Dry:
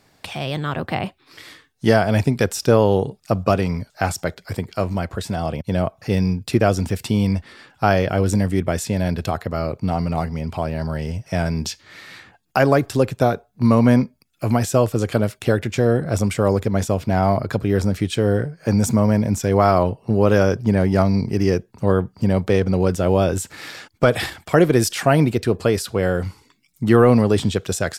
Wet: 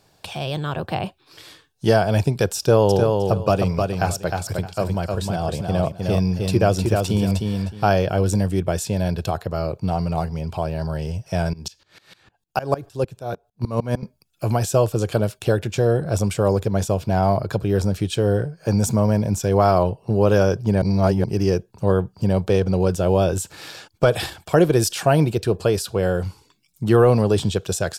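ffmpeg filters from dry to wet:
-filter_complex "[0:a]asettb=1/sr,asplit=3[s0][s1][s2];[s0]atrim=end=2.584[s3];[s1]atrim=start=2.58:end=7.9,asetpts=PTS-STARTPTS,afade=t=in:d=0.004:c=qsin,afade=t=out:st=5.316:d=0.004:c=qsin,aecho=1:1:309|618|927:0.631|0.133|0.0278,atrim=end_sample=234612[s4];[s2]atrim=start=7.896[s5];[s3][s4]acrossfade=d=0.004:c1=hsin:c2=qsin[s6];[s6][s5]acrossfade=d=0.004:c1=qsin:c2=hsin,asettb=1/sr,asplit=3[s7][s8][s9];[s7]atrim=end=11.534[s10];[s8]atrim=start=11.53:end=14.03,asetpts=PTS-STARTPTS,afade=t=in:d=0.004:c=qsin,afade=t=out:st=2.496:d=0.004:c=qsin,aeval=exprs='val(0)*pow(10,-22*if(lt(mod(-6.6*n/s,1),2*abs(-6.6)/1000),1-mod(-6.6*n/s,1)/(2*abs(-6.6)/1000),(mod(-6.6*n/s,1)-2*abs(-6.6)/1000)/(1-2*abs(-6.6)/1000))/20)':c=same[s11];[s9]atrim=start=14.026[s12];[s10][s11]acrossfade=d=0.004:c1=hsin:c2=qsin[s13];[s13][s12]acrossfade=d=0.004:c1=qsin:c2=hsin,asplit=3[s14][s15][s16];[s14]atrim=end=20.822[s17];[s15]atrim=start=20.818:end=21.242,asetpts=PTS-STARTPTS,areverse[s18];[s16]atrim=start=21.238[s19];[s17][s18]acrossfade=d=0.004:c1=hsin:c2=hsin[s20];[s20][s19]acrossfade=d=0.004:c1=hsin:c2=hsin,equalizer=f=250:t=o:w=0.33:g=-10,equalizer=f=1250:t=o:w=0.33:g=-4,equalizer=f=2000:t=o:w=0.33:g=-11"

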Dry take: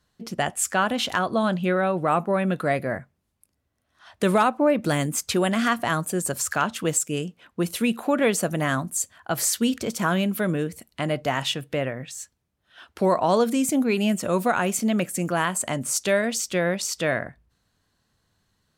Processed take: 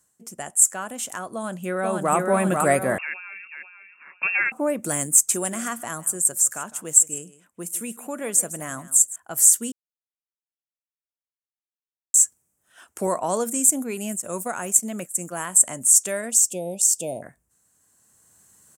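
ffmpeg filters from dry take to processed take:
-filter_complex "[0:a]asplit=2[s0][s1];[s1]afade=t=in:st=1.34:d=0.01,afade=t=out:st=2.15:d=0.01,aecho=0:1:490|980|1470|1960|2450:0.501187|0.225534|0.10149|0.0456707|0.0205518[s2];[s0][s2]amix=inputs=2:normalize=0,asettb=1/sr,asplit=3[s3][s4][s5];[s3]atrim=end=2.984[s6];[s4]atrim=start=2.98:end=4.52,asetpts=PTS-STARTPTS,afade=t=in:d=0.004:c=qsin,afade=t=out:st=1.536:d=0.004:c=qsin,lowpass=f=2500:t=q:w=0.5098,lowpass=f=2500:t=q:w=0.6013,lowpass=f=2500:t=q:w=0.9,lowpass=f=2500:t=q:w=2.563,afreqshift=-2900[s7];[s5]atrim=start=4.516[s8];[s6][s7]acrossfade=d=0.004:c1=hsin:c2=qsin[s9];[s9][s8]acrossfade=d=0.004:c1=qsin:c2=hsin,asettb=1/sr,asplit=3[s10][s11][s12];[s10]atrim=end=5.144[s13];[s11]atrim=start=5.14:end=9.16,asetpts=PTS-STARTPTS,afade=t=in:d=0.004:c=qsin,afade=t=out:st=4.016:d=0.004:c=qsin,aecho=1:1:157:0.141,atrim=end_sample=177282[s14];[s12]atrim=start=9.156[s15];[s13][s14]acrossfade=d=0.004:c1=hsin:c2=qsin[s16];[s16][s15]acrossfade=d=0.004:c1=qsin:c2=hsin,asettb=1/sr,asplit=3[s17][s18][s19];[s17]atrim=end=13.074[s20];[s18]atrim=start=13.07:end=15.51,asetpts=PTS-STARTPTS,afade=t=in:d=0.004:c=qsin,afade=t=out:st=2.436:d=0.004:c=qsin,agate=range=0.0224:threshold=0.0501:ratio=3:release=100:detection=peak[s21];[s19]atrim=start=15.506[s22];[s20][s21]acrossfade=d=0.004:c1=hsin:c2=qsin[s23];[s23][s22]acrossfade=d=0.004:c1=qsin:c2=hsin,asplit=3[s24][s25][s26];[s24]afade=t=out:st=16.3:d=0.02[s27];[s25]asuperstop=centerf=1500:order=12:qfactor=0.9,afade=t=in:st=16.3:d=0.02,afade=t=out:st=17.22:d=0.02[s28];[s26]afade=t=in:st=17.22:d=0.02[s29];[s27][s28][s29]amix=inputs=3:normalize=0,asplit=3[s30][s31][s32];[s30]atrim=end=9.72,asetpts=PTS-STARTPTS,afade=t=out:st=9.716:d=0.004:c=hsin[s33];[s31]atrim=start=9.72:end=12.14,asetpts=PTS-STARTPTS,volume=0[s34];[s32]atrim=start=12.14,asetpts=PTS-STARTPTS,afade=t=in:d=0.004:c=hsin[s35];[s33][s34][s35]concat=n=3:v=0:a=1,highpass=f=180:p=1,highshelf=f=5700:t=q:w=3:g=12.5,dynaudnorm=f=190:g=13:m=3.76,volume=0.891"

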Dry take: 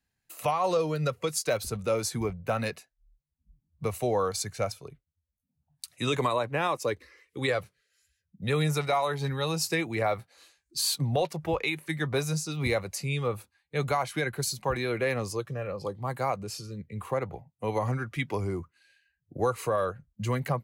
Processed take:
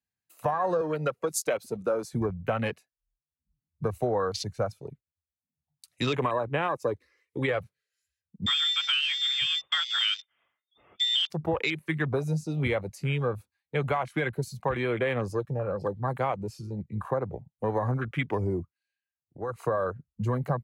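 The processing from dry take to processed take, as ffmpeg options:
-filter_complex "[0:a]asettb=1/sr,asplit=3[s0][s1][s2];[s0]atrim=end=0.814[s3];[s1]atrim=start=0.81:end=2.13,asetpts=PTS-STARTPTS,afade=t=in:d=0.004:c=qsin,afade=t=out:st=1.316:d=0.004:c=qsin,highpass=230[s4];[s2]atrim=start=2.126[s5];[s3][s4]acrossfade=d=0.004:c1=hsin:c2=qsin[s6];[s6][s5]acrossfade=d=0.004:c1=qsin:c2=hsin,asettb=1/sr,asplit=3[s7][s8][s9];[s7]atrim=end=8.464[s10];[s8]atrim=start=8.46:end=11.3,asetpts=PTS-STARTPTS,afade=t=in:d=0.004:c=qsin,afade=t=out:st=2.836:d=0.004:c=qsin,lowpass=f=3100:t=q:w=0.5098,lowpass=f=3100:t=q:w=0.6013,lowpass=f=3100:t=q:w=0.9,lowpass=f=3100:t=q:w=2.563,afreqshift=-3700[s11];[s9]atrim=start=11.296[s12];[s10][s11]acrossfade=d=0.004:c1=hsin:c2=qsin[s13];[s13][s12]acrossfade=d=0.004:c1=qsin:c2=hsin,asplit=3[s14][s15][s16];[s14]atrim=end=18.74,asetpts=PTS-STARTPTS,afade=t=out:st=18.59:d=0.15:silence=0.251189[s17];[s15]atrim=start=18.74:end=19.48,asetpts=PTS-STARTPTS,volume=0.251[s18];[s16]atrim=start=19.48,asetpts=PTS-STARTPTS,afade=t=in:d=0.15:silence=0.251189[s19];[s17][s18][s19]concat=n=3:v=0:a=1,acompressor=threshold=0.0398:ratio=4,highpass=64,afwtdn=0.0126,volume=1.68"

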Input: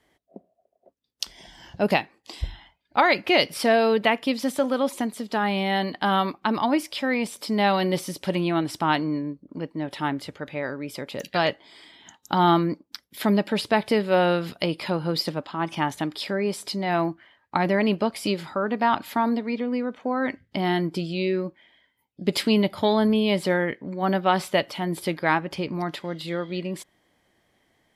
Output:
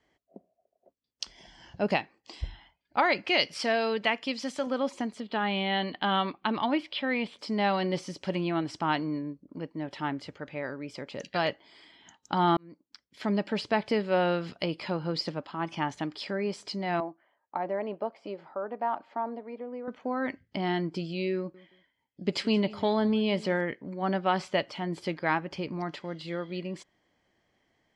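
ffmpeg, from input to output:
-filter_complex "[0:a]asettb=1/sr,asplit=3[s0][s1][s2];[s0]atrim=end=3.254[s3];[s1]atrim=start=3.25:end=4.67,asetpts=PTS-STARTPTS,afade=t=in:d=0.004:c=qsin,afade=t=out:st=1.416:d=0.004:c=qsin,tiltshelf=f=1400:g=-4[s4];[s2]atrim=start=4.666[s5];[s3][s4]acrossfade=d=0.004:c1=hsin:c2=qsin[s6];[s6][s5]acrossfade=d=0.004:c1=qsin:c2=hsin,asettb=1/sr,asplit=3[s7][s8][s9];[s7]atrim=end=5.204[s10];[s8]atrim=start=5.2:end=7.39,asetpts=PTS-STARTPTS,afade=t=in:d=0.004:c=qsin,afade=t=out:st=2.186:d=0.004:c=qsin,highshelf=f=4700:t=q:w=3:g=-9.5[s11];[s9]atrim=start=7.386[s12];[s10][s11]acrossfade=d=0.004:c1=hsin:c2=qsin[s13];[s13][s12]acrossfade=d=0.004:c1=qsin:c2=hsin,asettb=1/sr,asplit=3[s14][s15][s16];[s14]atrim=end=17.004[s17];[s15]atrim=start=17:end=19.88,asetpts=PTS-STARTPTS,afade=t=in:d=0.004:c=qsin,afade=t=out:st=2.876:d=0.004:c=qsin,bandpass=f=660:t=q:w=1.4[s18];[s16]atrim=start=19.876[s19];[s17][s18]acrossfade=d=0.004:c1=hsin:c2=qsin[s20];[s20][s19]acrossfade=d=0.004:c1=qsin:c2=hsin,asettb=1/sr,asplit=3[s21][s22][s23];[s21]atrim=end=21.374[s24];[s22]atrim=start=21.37:end=23.61,asetpts=PTS-STARTPTS,afade=t=in:d=0.004:c=qsin,afade=t=out:st=2.236:d=0.004:c=qsin,aecho=1:1:171|342:0.0944|0.0255,atrim=end_sample=98784[s25];[s23]atrim=start=23.606[s26];[s24][s25]acrossfade=d=0.004:c1=hsin:c2=qsin[s27];[s27][s26]acrossfade=d=0.004:c1=qsin:c2=hsin,asplit=2[s28][s29];[s28]atrim=end=12.57,asetpts=PTS-STARTPTS,afade=t=out:st=12.566:d=0.004:c=hsin[s30];[s29]atrim=start=12.57,asetpts=PTS-STARTPTS,afade=t=in:d=0.91[s31];[s30][s31]concat=n=2:v=0:a=1,lowpass=f=7000:w=0.5412,lowpass=f=7000:w=1.3066,bandreject=f=3700:w=11,volume=0.531"

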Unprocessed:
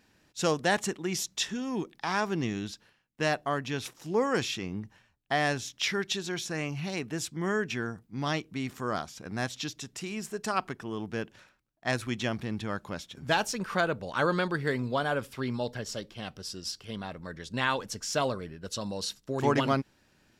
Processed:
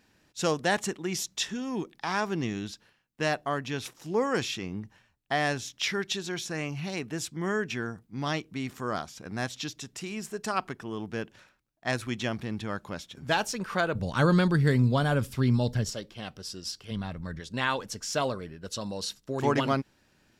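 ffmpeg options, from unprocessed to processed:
-filter_complex "[0:a]asettb=1/sr,asplit=3[s0][s1][s2];[s0]atrim=end=13.954[s3];[s1]atrim=start=13.95:end=15.9,asetpts=PTS-STARTPTS,afade=t=in:d=0.004:c=qsin,afade=t=out:st=1.946:d=0.004:c=qsin,bass=f=250:g=14,treble=f=4000:g=6[s4];[s2]atrim=start=15.896[s5];[s3][s4]acrossfade=d=0.004:c1=hsin:c2=qsin[s6];[s6][s5]acrossfade=d=0.004:c1=qsin:c2=hsin,asplit=3[s7][s8][s9];[s7]afade=t=out:st=16.9:d=0.02[s10];[s8]asubboost=boost=3:cutoff=210,afade=t=in:st=16.9:d=0.02,afade=t=out:st=17.39:d=0.02[s11];[s9]afade=t=in:st=17.39:d=0.02[s12];[s10][s11][s12]amix=inputs=3:normalize=0"

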